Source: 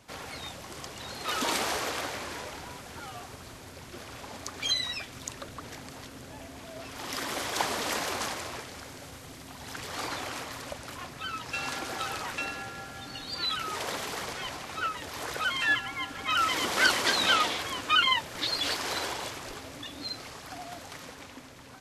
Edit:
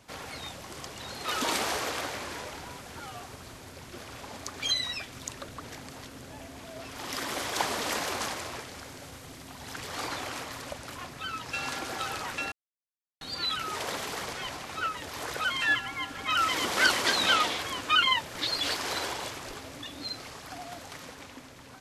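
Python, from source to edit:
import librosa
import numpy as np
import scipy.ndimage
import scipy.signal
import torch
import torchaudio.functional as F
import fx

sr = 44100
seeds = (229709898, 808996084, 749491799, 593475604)

y = fx.edit(x, sr, fx.silence(start_s=12.52, length_s=0.69), tone=tone)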